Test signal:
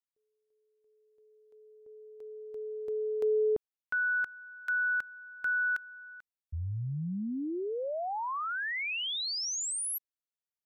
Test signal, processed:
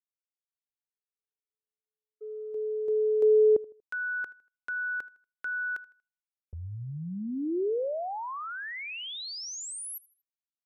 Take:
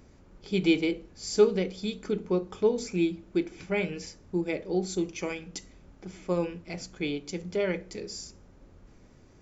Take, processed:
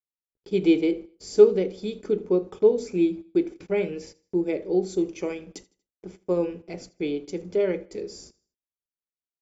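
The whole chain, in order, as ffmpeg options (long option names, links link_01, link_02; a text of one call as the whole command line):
ffmpeg -i in.wav -filter_complex "[0:a]agate=range=-58dB:threshold=-45dB:ratio=16:release=76:detection=rms,equalizer=frequency=410:width_type=o:width=1.5:gain=11,asplit=2[link_01][link_02];[link_02]aecho=0:1:79|158|237:0.0794|0.0302|0.0115[link_03];[link_01][link_03]amix=inputs=2:normalize=0,volume=-4.5dB" out.wav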